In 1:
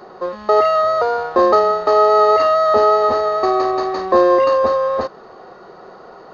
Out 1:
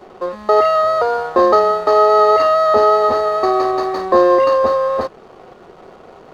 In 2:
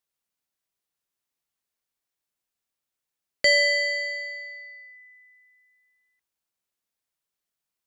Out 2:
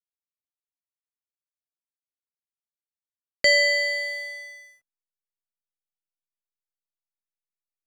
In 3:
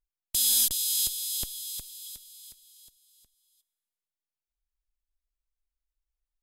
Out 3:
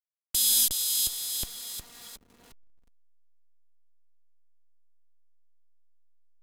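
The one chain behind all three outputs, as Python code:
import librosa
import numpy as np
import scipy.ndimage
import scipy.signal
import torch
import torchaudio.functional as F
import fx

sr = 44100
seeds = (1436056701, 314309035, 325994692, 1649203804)

y = fx.backlash(x, sr, play_db=-37.0)
y = y * 10.0 ** (1.0 / 20.0)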